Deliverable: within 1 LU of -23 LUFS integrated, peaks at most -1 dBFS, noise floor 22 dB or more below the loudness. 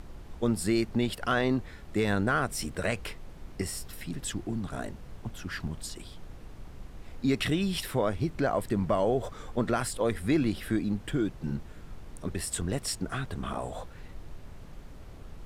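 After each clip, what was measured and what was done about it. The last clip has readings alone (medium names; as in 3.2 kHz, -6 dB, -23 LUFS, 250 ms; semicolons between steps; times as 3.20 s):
noise floor -47 dBFS; noise floor target -53 dBFS; loudness -31.0 LUFS; peak level -15.5 dBFS; loudness target -23.0 LUFS
-> noise print and reduce 6 dB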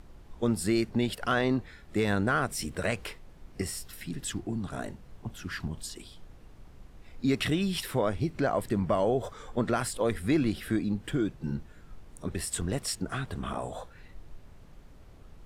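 noise floor -52 dBFS; noise floor target -53 dBFS
-> noise print and reduce 6 dB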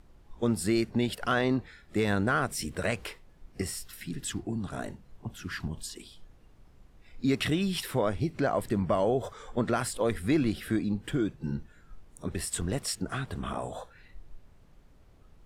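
noise floor -57 dBFS; loudness -31.0 LUFS; peak level -16.0 dBFS; loudness target -23.0 LUFS
-> trim +8 dB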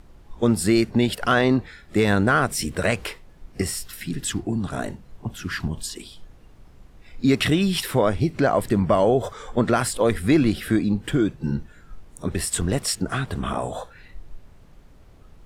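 loudness -23.0 LUFS; peak level -8.0 dBFS; noise floor -49 dBFS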